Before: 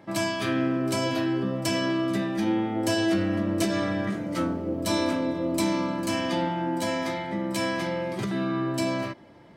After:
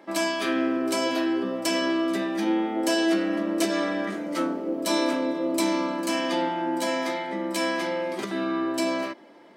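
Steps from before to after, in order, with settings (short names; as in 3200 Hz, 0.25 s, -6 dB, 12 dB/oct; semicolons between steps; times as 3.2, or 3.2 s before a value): HPF 250 Hz 24 dB/oct; gain +2 dB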